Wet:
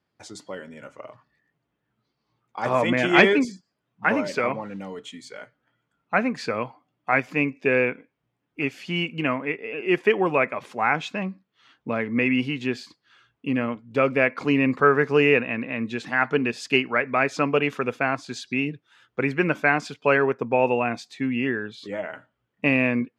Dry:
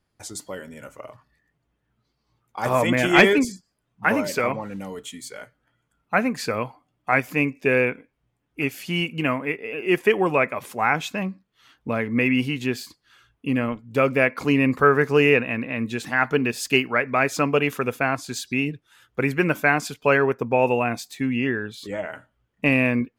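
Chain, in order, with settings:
band-pass filter 130–4,900 Hz
level −1 dB

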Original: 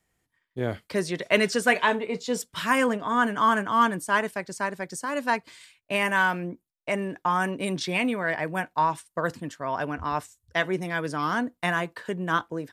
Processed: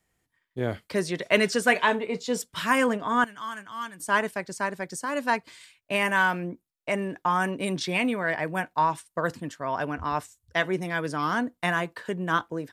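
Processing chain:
0:03.24–0:04.00: guitar amp tone stack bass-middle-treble 5-5-5

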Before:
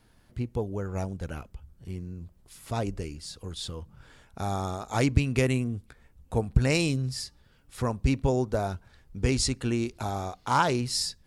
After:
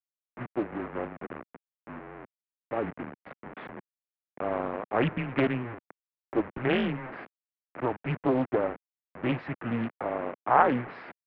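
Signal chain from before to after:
hold until the input has moved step −31.5 dBFS
single-sideband voice off tune −120 Hz 320–2,300 Hz
highs frequency-modulated by the lows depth 0.58 ms
level +3.5 dB

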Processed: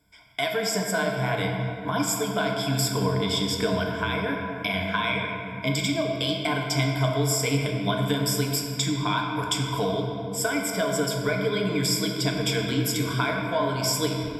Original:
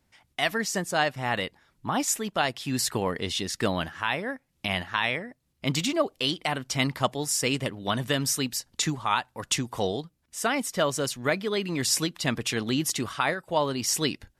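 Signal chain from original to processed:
EQ curve with evenly spaced ripples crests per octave 1.7, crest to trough 18 dB
downward compressor, threshold −24 dBFS, peak gain reduction 10 dB
rectangular room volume 130 cubic metres, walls hard, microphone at 0.41 metres

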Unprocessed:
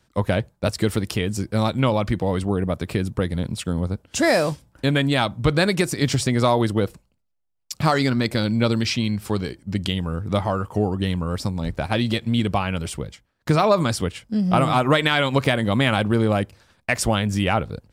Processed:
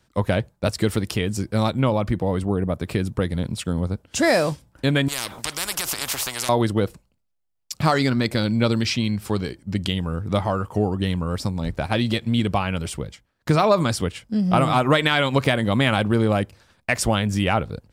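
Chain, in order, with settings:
0:01.71–0:02.83: parametric band 4,300 Hz −5.5 dB 2.8 octaves
0:05.08–0:06.49: every bin compressed towards the loudest bin 10 to 1

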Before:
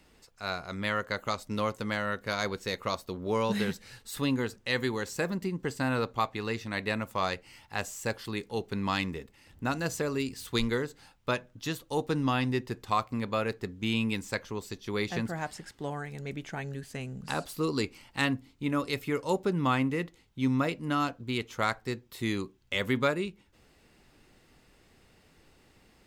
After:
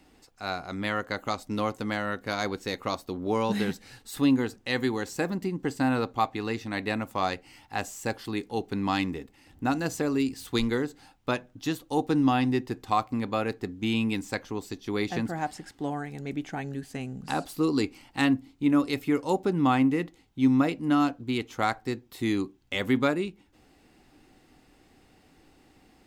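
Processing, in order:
hollow resonant body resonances 290/760 Hz, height 9 dB, ringing for 35 ms

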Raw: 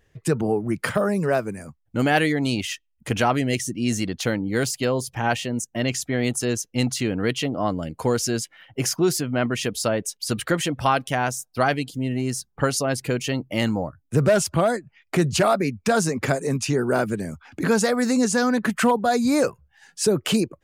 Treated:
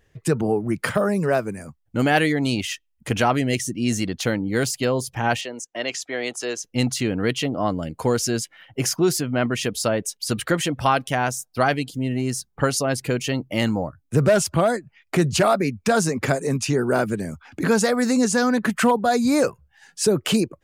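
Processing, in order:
0:05.41–0:06.64: three-way crossover with the lows and the highs turned down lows −24 dB, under 350 Hz, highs −15 dB, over 7,300 Hz
level +1 dB

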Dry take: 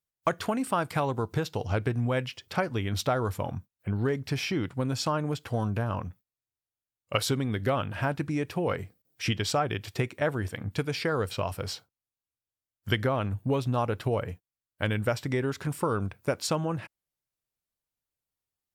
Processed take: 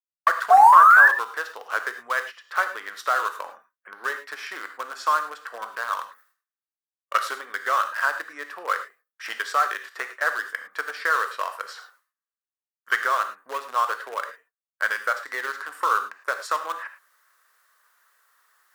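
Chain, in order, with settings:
wavefolder on the positive side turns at −18.5 dBFS
reversed playback
upward compression, threshold −37 dBFS
reversed playback
noise gate with hold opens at −53 dBFS
flat-topped bell 1,400 Hz +16 dB 1.1 octaves
sound drawn into the spectrogram rise, 0:00.50–0:01.08, 700–1,800 Hz −9 dBFS
in parallel at −5 dB: centre clipping without the shift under −19 dBFS
on the sum: high-pass filter 470 Hz 24 dB per octave
reverb whose tail is shaped and stops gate 130 ms flat, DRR 7.5 dB
level −7 dB

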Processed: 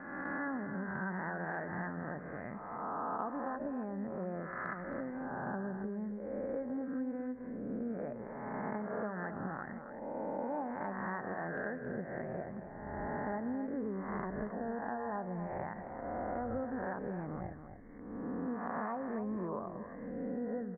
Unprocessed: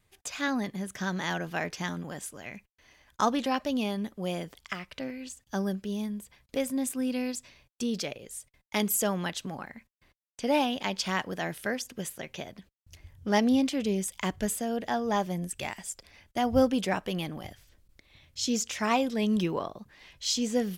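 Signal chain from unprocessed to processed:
peak hold with a rise ahead of every peak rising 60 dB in 1.33 s
Butterworth low-pass 1,800 Hz 72 dB per octave
downward compressor 6 to 1, threshold −35 dBFS, peak gain reduction 16.5 dB
on a send: single-tap delay 271 ms −9.5 dB
on the sum: level −1 dB

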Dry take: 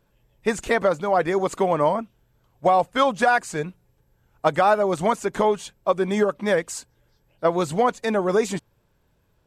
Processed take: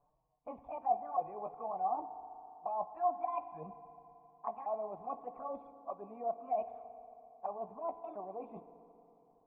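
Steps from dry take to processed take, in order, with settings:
pitch shifter swept by a sawtooth +7 semitones, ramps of 1,165 ms
low-shelf EQ 430 Hz +8 dB
reversed playback
downward compressor 16 to 1, threshold −28 dBFS, peak gain reduction 17.5 dB
reversed playback
flanger swept by the level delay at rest 7.4 ms, full sweep at −28 dBFS
formant resonators in series a
feedback delay network reverb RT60 3.3 s, high-frequency decay 0.55×, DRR 11 dB
level +7.5 dB

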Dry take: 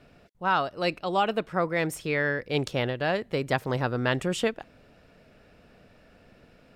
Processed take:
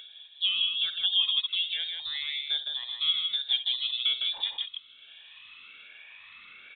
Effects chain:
rippled gain that drifts along the octave scale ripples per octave 2, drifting −1.2 Hz, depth 16 dB
downward compressor, threshold −28 dBFS, peak gain reduction 11.5 dB
band-pass filter sweep 680 Hz → 1,600 Hz, 0:04.41–0:06.06
voice inversion scrambler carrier 4,000 Hz
0:02.60–0:03.00: high-frequency loss of the air 270 metres
on a send: loudspeakers that aren't time-aligned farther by 22 metres −12 dB, 54 metres −5 dB
on the sum: upward compression, threshold −50 dBFS
level +8 dB

